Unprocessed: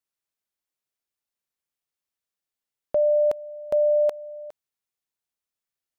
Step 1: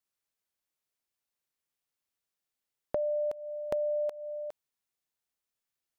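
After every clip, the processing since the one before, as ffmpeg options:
-af "acompressor=threshold=-29dB:ratio=10"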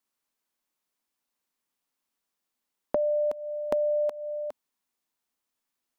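-af "equalizer=f=100:t=o:w=0.67:g=-12,equalizer=f=250:t=o:w=0.67:g=8,equalizer=f=1k:t=o:w=0.67:g=5,volume=3.5dB"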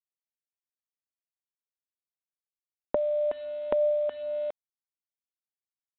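-af "aresample=8000,aeval=exprs='val(0)*gte(abs(val(0)),0.00596)':c=same,aresample=44100,aphaser=in_gain=1:out_gain=1:delay=2.9:decay=0.23:speed=0.45:type=sinusoidal"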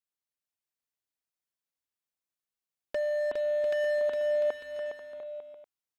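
-filter_complex "[0:a]volume=27.5dB,asoftclip=hard,volume=-27.5dB,asplit=2[a][b];[b]aecho=0:1:410|697|897.9|1039|1137:0.631|0.398|0.251|0.158|0.1[c];[a][c]amix=inputs=2:normalize=0"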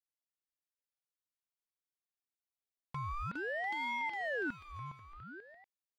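-af "aeval=exprs='val(0)*sin(2*PI*1000*n/s+1000*0.55/0.51*sin(2*PI*0.51*n/s))':c=same,volume=-6.5dB"

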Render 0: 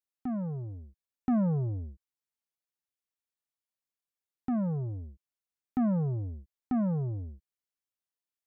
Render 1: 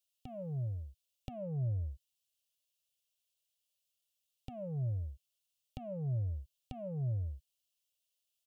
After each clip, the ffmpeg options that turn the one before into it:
-af "acompressor=threshold=-35dB:ratio=4,firequalizer=gain_entry='entry(130,0);entry(210,-20);entry(370,-16);entry(580,4);entry(880,-19);entry(1700,-21);entry(2800,10);entry(4300,6)':delay=0.05:min_phase=1,volume=3dB"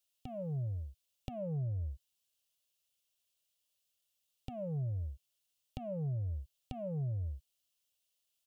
-af "acompressor=threshold=-36dB:ratio=6,volume=2.5dB"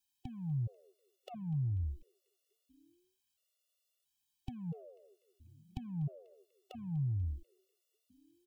-filter_complex "[0:a]asplit=6[a][b][c][d][e][f];[b]adelay=245,afreqshift=-90,volume=-22dB[g];[c]adelay=490,afreqshift=-180,volume=-26dB[h];[d]adelay=735,afreqshift=-270,volume=-30dB[i];[e]adelay=980,afreqshift=-360,volume=-34dB[j];[f]adelay=1225,afreqshift=-450,volume=-38.1dB[k];[a][g][h][i][j][k]amix=inputs=6:normalize=0,afftfilt=real='re*gt(sin(2*PI*0.74*pts/sr)*(1-2*mod(floor(b*sr/1024/370),2)),0)':imag='im*gt(sin(2*PI*0.74*pts/sr)*(1-2*mod(floor(b*sr/1024/370),2)),0)':win_size=1024:overlap=0.75,volume=2dB"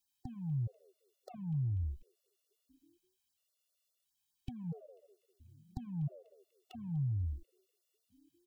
-af "afftfilt=real='re*(1-between(b*sr/1024,300*pow(2900/300,0.5+0.5*sin(2*PI*4.9*pts/sr))/1.41,300*pow(2900/300,0.5+0.5*sin(2*PI*4.9*pts/sr))*1.41))':imag='im*(1-between(b*sr/1024,300*pow(2900/300,0.5+0.5*sin(2*PI*4.9*pts/sr))/1.41,300*pow(2900/300,0.5+0.5*sin(2*PI*4.9*pts/sr))*1.41))':win_size=1024:overlap=0.75"

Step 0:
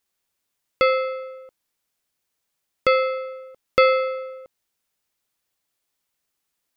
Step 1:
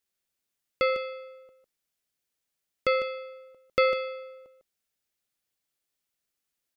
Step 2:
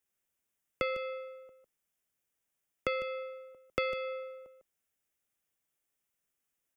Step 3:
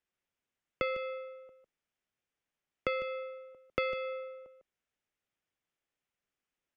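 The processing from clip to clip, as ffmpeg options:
-af "equalizer=f=990:t=o:w=0.7:g=-5,aecho=1:1:147|152:0.1|0.299,volume=-6dB"
-filter_complex "[0:a]acrossover=split=170|3000[a][b][c];[b]acompressor=threshold=-31dB:ratio=6[d];[a][d][c]amix=inputs=3:normalize=0,equalizer=f=4.3k:t=o:w=0.42:g=-14"
-af "lowpass=4.3k"

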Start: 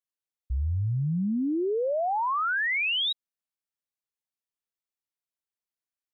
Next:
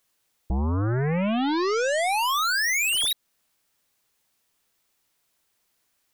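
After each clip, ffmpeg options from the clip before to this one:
-af "aeval=exprs='0.0668*sin(PI/2*1.78*val(0)/0.0668)':c=same,alimiter=level_in=3dB:limit=-24dB:level=0:latency=1:release=210,volume=-3dB,aeval=exprs='0.0447*(cos(1*acos(clip(val(0)/0.0447,-1,1)))-cos(1*PI/2))+0.000891*(cos(4*acos(clip(val(0)/0.0447,-1,1)))-cos(4*PI/2))+0.0112*(cos(5*acos(clip(val(0)/0.0447,-1,1)))-cos(5*PI/2))':c=same,volume=6dB"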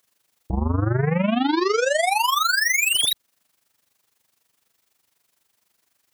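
-af "highpass=62,tremolo=f=24:d=0.75,volume=6.5dB"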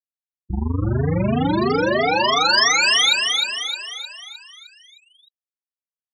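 -filter_complex "[0:a]afftfilt=real='re*gte(hypot(re,im),0.158)':imag='im*gte(hypot(re,im),0.158)':win_size=1024:overlap=0.75,lowpass=f=5.2k:t=q:w=3.4,asplit=2[a][b];[b]aecho=0:1:308|616|924|1232|1540|1848|2156:0.668|0.348|0.181|0.094|0.0489|0.0254|0.0132[c];[a][c]amix=inputs=2:normalize=0"

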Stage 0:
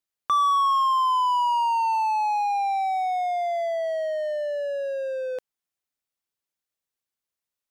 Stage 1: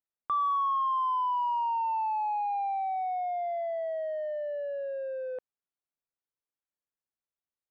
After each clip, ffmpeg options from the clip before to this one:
-af "lowpass=1.6k,volume=-6dB"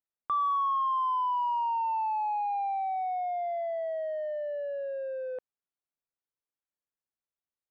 -af anull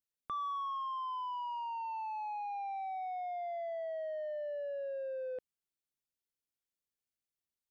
-af "equalizer=f=1k:w=0.82:g=-11.5,volume=1dB"

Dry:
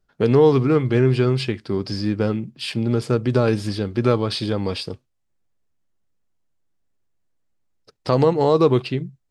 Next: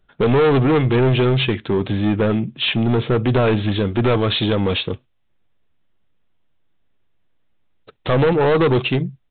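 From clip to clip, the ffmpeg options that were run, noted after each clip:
-af "aemphasis=mode=production:type=75kf,aresample=8000,asoftclip=type=tanh:threshold=-20dB,aresample=44100,volume=8dB"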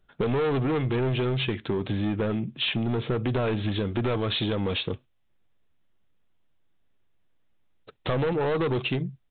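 -af "acompressor=threshold=-20dB:ratio=6,volume=-4dB"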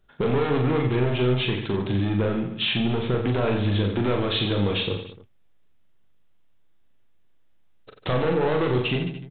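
-af "aecho=1:1:40|88|145.6|214.7|297.7:0.631|0.398|0.251|0.158|0.1,volume=1dB"

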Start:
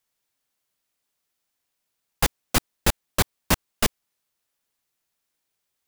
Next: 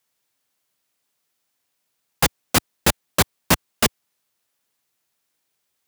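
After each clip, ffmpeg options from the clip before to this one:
-af "highpass=83,volume=4.5dB"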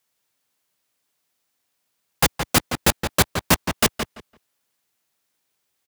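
-filter_complex "[0:a]asplit=2[a][b];[b]adelay=169,lowpass=f=3.7k:p=1,volume=-7dB,asplit=2[c][d];[d]adelay=169,lowpass=f=3.7k:p=1,volume=0.18,asplit=2[e][f];[f]adelay=169,lowpass=f=3.7k:p=1,volume=0.18[g];[a][c][e][g]amix=inputs=4:normalize=0"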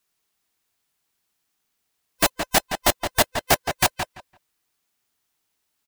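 -af "afftfilt=real='real(if(lt(b,1008),b+24*(1-2*mod(floor(b/24),2)),b),0)':imag='imag(if(lt(b,1008),b+24*(1-2*mod(floor(b/24),2)),b),0)':win_size=2048:overlap=0.75,volume=-1dB"

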